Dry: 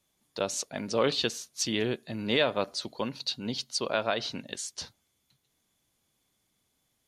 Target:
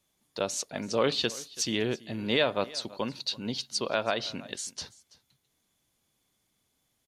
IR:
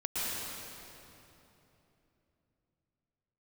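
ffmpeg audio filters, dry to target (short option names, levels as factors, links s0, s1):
-af "aecho=1:1:331:0.0944"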